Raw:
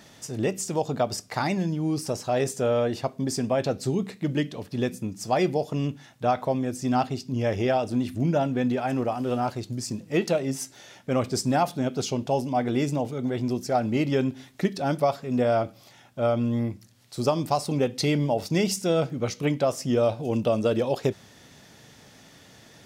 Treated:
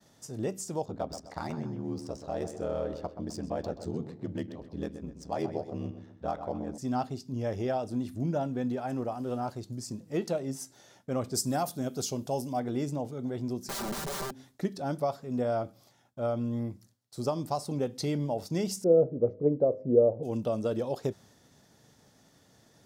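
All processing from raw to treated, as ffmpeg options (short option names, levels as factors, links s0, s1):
-filter_complex "[0:a]asettb=1/sr,asplit=3[s0][s1][s2];[s0]atrim=end=0.854[s3];[s1]atrim=start=0.85:end=6.78,asetpts=PTS-STARTPTS,afade=t=in:d=0.004:c=qsin,afade=t=out:st=5.926:d=0.004:c=qsin,adynamicsmooth=sensitivity=7:basefreq=3900,aeval=exprs='val(0)*sin(2*PI*40*n/s)':c=same,asplit=2[s4][s5];[s5]adelay=128,lowpass=f=3200:p=1,volume=0.316,asplit=2[s6][s7];[s7]adelay=128,lowpass=f=3200:p=1,volume=0.43,asplit=2[s8][s9];[s9]adelay=128,lowpass=f=3200:p=1,volume=0.43,asplit=2[s10][s11];[s11]adelay=128,lowpass=f=3200:p=1,volume=0.43,asplit=2[s12][s13];[s13]adelay=128,lowpass=f=3200:p=1,volume=0.43[s14];[s4][s6][s8][s10][s12][s14]amix=inputs=6:normalize=0,atrim=end_sample=261513[s15];[s2]atrim=start=6.776[s16];[s3][s15]acrossfade=d=0.004:c1=hsin:c2=qsin[s17];[s17][s16]acrossfade=d=0.004:c1=qsin:c2=hsin,asettb=1/sr,asplit=3[s18][s19][s20];[s18]atrim=end=11.344[s21];[s19]atrim=start=11.34:end=12.6,asetpts=PTS-STARTPTS,afade=t=in:d=0.004:c=qsin,afade=t=out:st=1.256:d=0.004:c=qsin,aemphasis=mode=production:type=50kf,bandreject=f=880:w=19[s22];[s20]atrim=start=12.596[s23];[s21][s22]acrossfade=d=0.004:c1=hsin:c2=qsin[s24];[s24][s23]acrossfade=d=0.004:c1=qsin:c2=hsin,asettb=1/sr,asplit=3[s25][s26][s27];[s25]atrim=end=13.654[s28];[s26]atrim=start=13.65:end=14.32,asetpts=PTS-STARTPTS,afade=t=in:d=0.004:c=qsin,afade=t=out:st=0.666:d=0.004:c=qsin,aeval=exprs='(mod(16.8*val(0)+1,2)-1)/16.8':c=same,aecho=1:1:5.1:0.76,atrim=end_sample=29547[s29];[s27]atrim=start=14.316[s30];[s28][s29]acrossfade=d=0.004:c1=hsin:c2=qsin[s31];[s31][s30]acrossfade=d=0.004:c1=qsin:c2=hsin,asettb=1/sr,asplit=3[s32][s33][s34];[s32]atrim=end=18.844[s35];[s33]atrim=start=18.84:end=20.23,asetpts=PTS-STARTPTS,afade=t=in:d=0.004:c=qsin,afade=t=out:st=1.386:d=0.004:c=qsin,lowpass=f=480:t=q:w=3.8,bandreject=f=104.7:t=h:w=4,bandreject=f=209.4:t=h:w=4,bandreject=f=314.1:t=h:w=4,bandreject=f=418.8:t=h:w=4,bandreject=f=523.5:t=h:w=4,bandreject=f=628.2:t=h:w=4[s36];[s34]atrim=start=20.226[s37];[s35][s36]acrossfade=d=0.004:c1=hsin:c2=qsin[s38];[s38][s37]acrossfade=d=0.004:c1=qsin:c2=hsin,agate=range=0.0224:threshold=0.00398:ratio=3:detection=peak,equalizer=f=2500:w=1.2:g=-8.5,volume=0.473"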